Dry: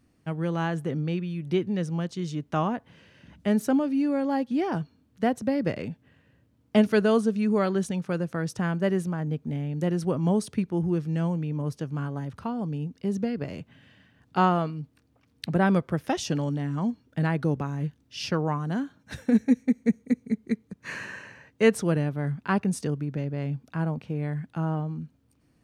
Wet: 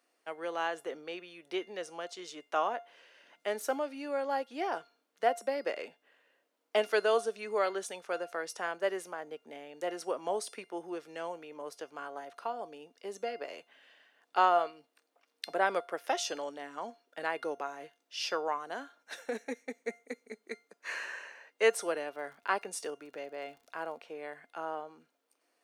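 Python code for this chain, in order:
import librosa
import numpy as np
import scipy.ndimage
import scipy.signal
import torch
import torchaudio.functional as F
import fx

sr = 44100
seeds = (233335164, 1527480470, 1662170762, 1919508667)

y = scipy.signal.sosfilt(scipy.signal.butter(4, 450.0, 'highpass', fs=sr, output='sos'), x)
y = fx.comb_fb(y, sr, f0_hz=700.0, decay_s=0.31, harmonics='all', damping=0.0, mix_pct=70)
y = fx.dmg_crackle(y, sr, seeds[0], per_s=75.0, level_db=-59.0, at=(21.62, 24.08), fade=0.02)
y = F.gain(torch.from_numpy(y), 8.0).numpy()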